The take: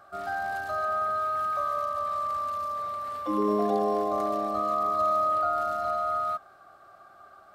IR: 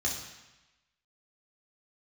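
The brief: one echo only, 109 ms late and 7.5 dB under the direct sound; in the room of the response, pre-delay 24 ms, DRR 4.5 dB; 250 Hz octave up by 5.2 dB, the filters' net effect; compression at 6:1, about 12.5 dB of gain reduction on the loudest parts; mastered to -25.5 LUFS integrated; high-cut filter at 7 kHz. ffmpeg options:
-filter_complex "[0:a]lowpass=7000,equalizer=f=250:t=o:g=7,acompressor=threshold=0.0251:ratio=6,aecho=1:1:109:0.422,asplit=2[s0][s1];[1:a]atrim=start_sample=2205,adelay=24[s2];[s1][s2]afir=irnorm=-1:irlink=0,volume=0.316[s3];[s0][s3]amix=inputs=2:normalize=0,volume=2.37"

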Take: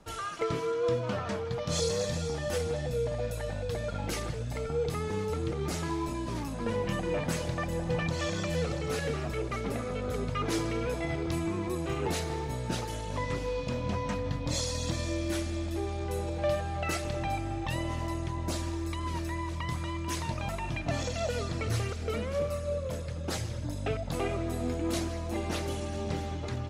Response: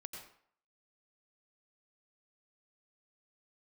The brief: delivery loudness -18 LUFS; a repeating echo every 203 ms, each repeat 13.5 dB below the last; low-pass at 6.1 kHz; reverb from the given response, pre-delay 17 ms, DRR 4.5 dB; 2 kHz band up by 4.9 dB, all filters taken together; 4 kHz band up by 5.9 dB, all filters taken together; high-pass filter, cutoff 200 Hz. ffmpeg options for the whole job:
-filter_complex "[0:a]highpass=200,lowpass=6100,equalizer=f=2000:t=o:g=4,equalizer=f=4000:t=o:g=7,aecho=1:1:203|406:0.211|0.0444,asplit=2[s0][s1];[1:a]atrim=start_sample=2205,adelay=17[s2];[s1][s2]afir=irnorm=-1:irlink=0,volume=0.891[s3];[s0][s3]amix=inputs=2:normalize=0,volume=4.73"

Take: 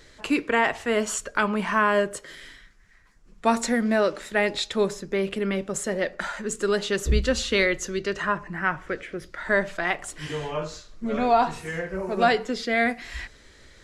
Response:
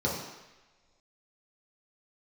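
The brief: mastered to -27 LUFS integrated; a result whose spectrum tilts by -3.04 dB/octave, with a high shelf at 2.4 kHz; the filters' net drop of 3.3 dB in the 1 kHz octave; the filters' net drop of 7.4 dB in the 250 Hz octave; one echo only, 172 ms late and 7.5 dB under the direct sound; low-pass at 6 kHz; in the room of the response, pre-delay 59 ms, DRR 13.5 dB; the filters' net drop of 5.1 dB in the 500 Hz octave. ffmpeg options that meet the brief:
-filter_complex "[0:a]lowpass=6000,equalizer=f=250:t=o:g=-8.5,equalizer=f=500:t=o:g=-3.5,equalizer=f=1000:t=o:g=-3.5,highshelf=f=2400:g=5,aecho=1:1:172:0.422,asplit=2[s0][s1];[1:a]atrim=start_sample=2205,adelay=59[s2];[s1][s2]afir=irnorm=-1:irlink=0,volume=0.0668[s3];[s0][s3]amix=inputs=2:normalize=0,volume=0.944"

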